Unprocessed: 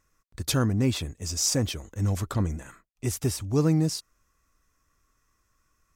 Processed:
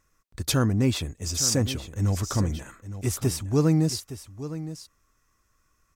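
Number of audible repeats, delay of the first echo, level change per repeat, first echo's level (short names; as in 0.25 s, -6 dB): 1, 0.863 s, no steady repeat, -13.0 dB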